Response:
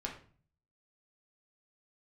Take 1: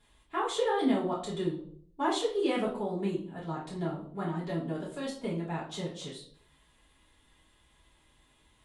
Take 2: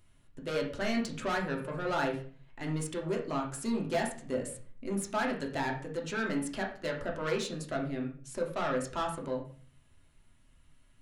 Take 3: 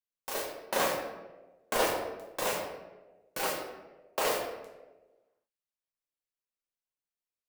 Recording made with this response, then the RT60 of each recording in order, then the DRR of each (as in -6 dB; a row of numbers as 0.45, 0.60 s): 2; 0.60, 0.45, 1.2 s; -7.0, -1.0, -5.0 dB